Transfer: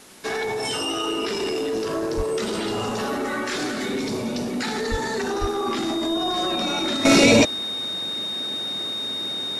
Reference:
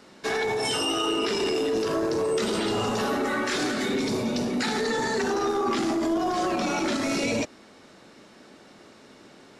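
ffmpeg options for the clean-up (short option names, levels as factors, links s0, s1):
-filter_complex "[0:a]bandreject=f=3700:w=30,asplit=3[s0][s1][s2];[s0]afade=t=out:st=2.16:d=0.02[s3];[s1]highpass=f=140:w=0.5412,highpass=f=140:w=1.3066,afade=t=in:st=2.16:d=0.02,afade=t=out:st=2.28:d=0.02[s4];[s2]afade=t=in:st=2.28:d=0.02[s5];[s3][s4][s5]amix=inputs=3:normalize=0,asplit=3[s6][s7][s8];[s6]afade=t=out:st=4.9:d=0.02[s9];[s7]highpass=f=140:w=0.5412,highpass=f=140:w=1.3066,afade=t=in:st=4.9:d=0.02,afade=t=out:st=5.02:d=0.02[s10];[s8]afade=t=in:st=5.02:d=0.02[s11];[s9][s10][s11]amix=inputs=3:normalize=0,asplit=3[s12][s13][s14];[s12]afade=t=out:st=5.4:d=0.02[s15];[s13]highpass=f=140:w=0.5412,highpass=f=140:w=1.3066,afade=t=in:st=5.4:d=0.02,afade=t=out:st=5.52:d=0.02[s16];[s14]afade=t=in:st=5.52:d=0.02[s17];[s15][s16][s17]amix=inputs=3:normalize=0,afwtdn=0.0045,asetnsamples=n=441:p=0,asendcmd='7.05 volume volume -12dB',volume=1"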